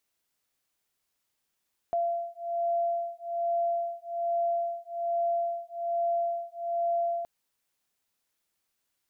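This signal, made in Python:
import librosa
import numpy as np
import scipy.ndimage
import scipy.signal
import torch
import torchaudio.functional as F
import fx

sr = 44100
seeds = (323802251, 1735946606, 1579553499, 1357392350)

y = fx.two_tone_beats(sr, length_s=5.32, hz=684.0, beat_hz=1.2, level_db=-30.0)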